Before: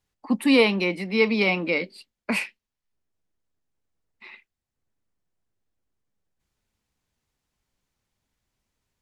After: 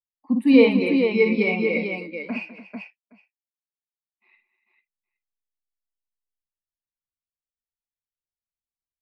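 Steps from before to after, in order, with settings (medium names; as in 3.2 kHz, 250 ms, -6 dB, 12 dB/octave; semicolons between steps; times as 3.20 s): 2.31–4.29 s: cabinet simulation 130–6100 Hz, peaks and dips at 710 Hz +9 dB, 2 kHz -5 dB, 3.9 kHz -7 dB; multi-tap echo 52/60/202/290/445/819 ms -7.5/-7/-10/-10/-3.5/-16 dB; spectral contrast expander 1.5:1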